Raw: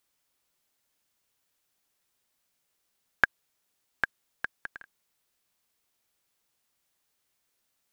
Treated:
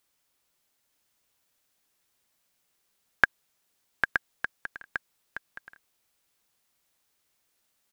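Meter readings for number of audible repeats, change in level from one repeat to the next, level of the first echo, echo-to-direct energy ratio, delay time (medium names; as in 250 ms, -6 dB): 1, no regular repeats, -7.0 dB, -7.0 dB, 921 ms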